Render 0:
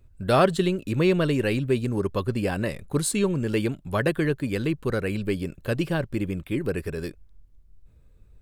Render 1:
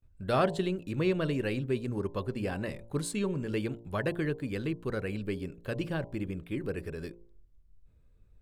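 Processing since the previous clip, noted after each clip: gate with hold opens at -49 dBFS; treble shelf 6.9 kHz -7 dB; de-hum 57.57 Hz, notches 18; trim -7 dB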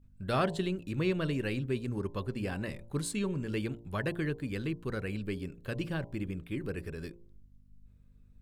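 peaking EQ 580 Hz -4.5 dB 1.6 oct; hum 50 Hz, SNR 26 dB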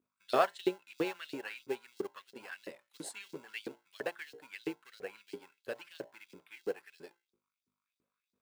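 in parallel at -10.5 dB: sample-rate reducer 1.2 kHz, jitter 0%; on the sum: LFO high-pass saw up 3 Hz 340–5100 Hz; upward expansion 1.5:1, over -41 dBFS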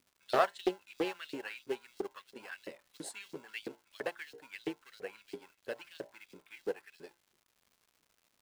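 crackle 250 per s -55 dBFS; loudspeaker Doppler distortion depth 0.26 ms

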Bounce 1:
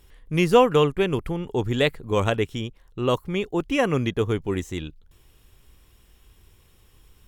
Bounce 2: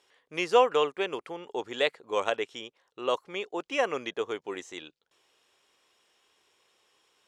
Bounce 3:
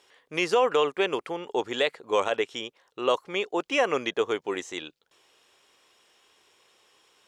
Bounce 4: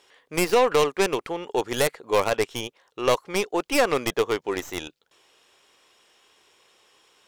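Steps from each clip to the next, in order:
Chebyshev band-pass 550–6400 Hz, order 2; trim -3 dB
peak limiter -18.5 dBFS, peak gain reduction 9 dB; trim +6 dB
tracing distortion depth 0.22 ms; trim +2.5 dB

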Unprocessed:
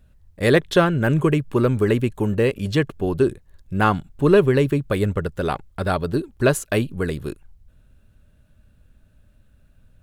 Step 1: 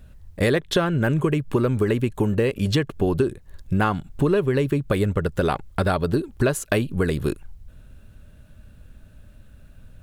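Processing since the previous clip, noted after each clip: compression 6:1, threshold -26 dBFS, peak gain reduction 15 dB; trim +8 dB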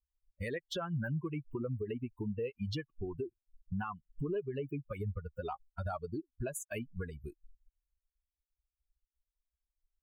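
expander on every frequency bin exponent 3; peak limiter -22.5 dBFS, peak gain reduction 9 dB; trim -6.5 dB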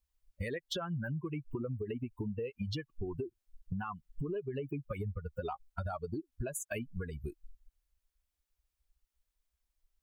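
compression, threshold -41 dBFS, peak gain reduction 9 dB; trim +6.5 dB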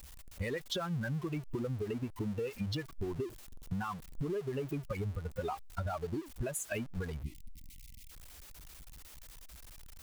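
jump at every zero crossing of -44 dBFS; time-frequency box 7.23–8.11 s, 310–1900 Hz -22 dB

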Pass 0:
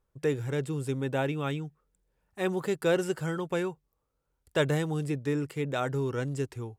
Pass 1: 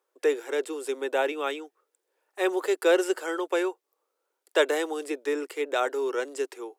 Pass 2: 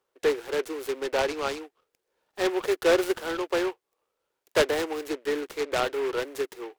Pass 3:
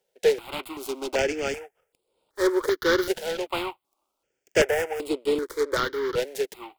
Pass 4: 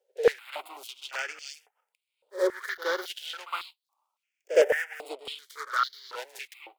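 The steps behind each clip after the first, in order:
steep high-pass 330 Hz 48 dB/octave; trim +5 dB
delay time shaken by noise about 1.6 kHz, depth 0.067 ms
stepped phaser 2.6 Hz 310–6000 Hz; trim +5 dB
pre-echo 63 ms -14.5 dB; step-sequenced high-pass 3.6 Hz 510–4200 Hz; trim -8 dB

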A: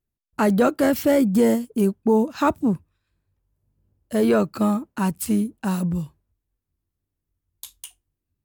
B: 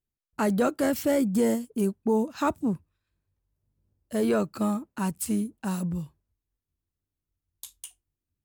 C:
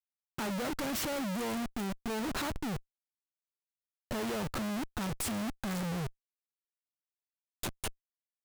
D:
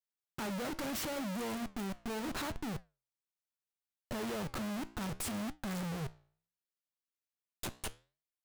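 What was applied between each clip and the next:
dynamic bell 8.1 kHz, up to +5 dB, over -49 dBFS, Q 1.1; trim -6 dB
Schmitt trigger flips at -42.5 dBFS; trim -5 dB
flange 0.72 Hz, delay 8 ms, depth 9.7 ms, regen -80%; trim +1 dB

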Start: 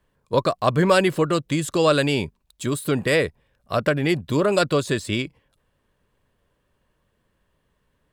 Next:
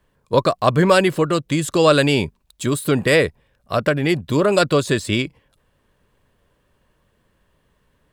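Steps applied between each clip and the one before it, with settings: gain riding 2 s; trim +3 dB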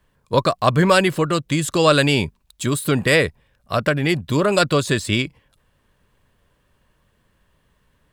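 peaking EQ 430 Hz -4 dB 1.8 oct; trim +1.5 dB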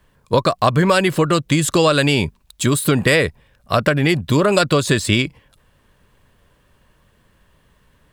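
compression 6:1, threshold -17 dBFS, peak gain reduction 8 dB; trim +6 dB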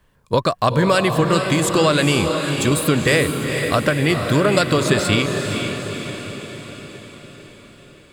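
echo that smears into a reverb 465 ms, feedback 58%, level -5.5 dB; trim -2 dB

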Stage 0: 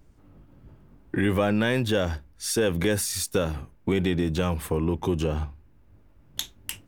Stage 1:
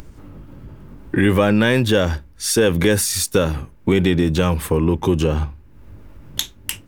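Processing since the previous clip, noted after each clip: upward compressor, threshold -38 dBFS; peaking EQ 710 Hz -5.5 dB 0.22 oct; trim +8 dB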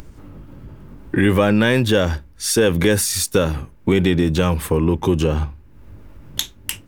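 no audible change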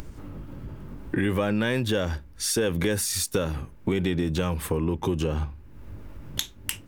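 compression 2:1, threshold -29 dBFS, peak gain reduction 10 dB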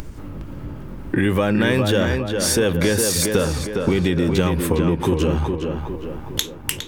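tape echo 410 ms, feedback 56%, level -3.5 dB, low-pass 2.7 kHz; trim +6 dB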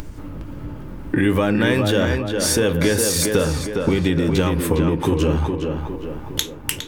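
FDN reverb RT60 0.41 s, high-frequency decay 0.55×, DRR 11 dB

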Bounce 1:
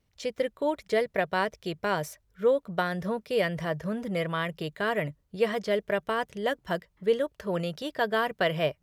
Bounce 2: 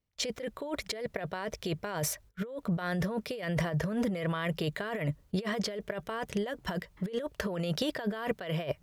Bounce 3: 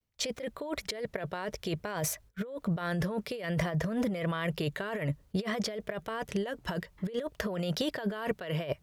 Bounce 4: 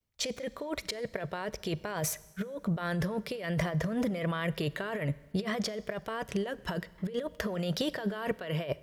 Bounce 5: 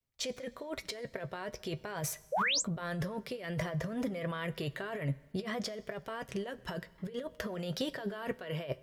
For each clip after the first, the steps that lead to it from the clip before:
gate -59 dBFS, range -22 dB; compressor with a negative ratio -36 dBFS, ratio -1; trim +2.5 dB
vibrato 0.57 Hz 56 cents
Schroeder reverb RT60 1.2 s, combs from 30 ms, DRR 19 dB
painted sound rise, 2.32–2.62 s, 490–8400 Hz -26 dBFS; flange 1 Hz, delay 7.2 ms, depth 1.1 ms, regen +59%

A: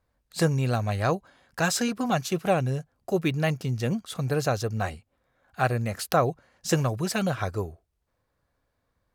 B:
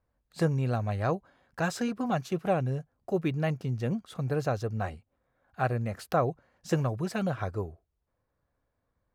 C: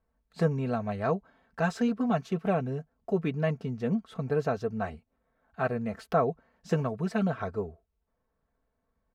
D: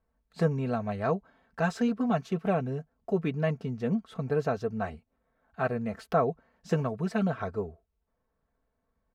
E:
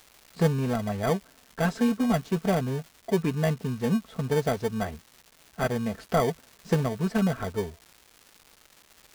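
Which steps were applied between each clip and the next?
treble shelf 2.7 kHz -11.5 dB; trim -3 dB
low-pass 2.6 kHz 6 dB/octave; comb 4.5 ms, depth 63%
no audible change
in parallel at -5 dB: sample-and-hold 33×; on the sum: crackle 440 per s -40 dBFS

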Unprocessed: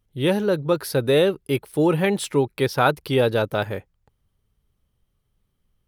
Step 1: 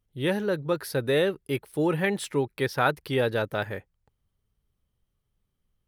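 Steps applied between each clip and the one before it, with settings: dynamic bell 1.8 kHz, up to +7 dB, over -44 dBFS, Q 2.9; trim -6 dB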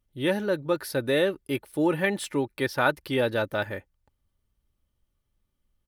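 comb 3.4 ms, depth 37%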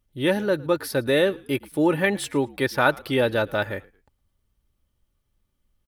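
frequency-shifting echo 111 ms, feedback 31%, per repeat -61 Hz, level -23.5 dB; trim +3.5 dB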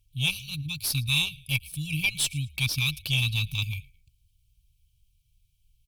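brick-wall FIR band-stop 160–2200 Hz; Chebyshev shaper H 6 -24 dB, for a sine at -17 dBFS; trim +6 dB

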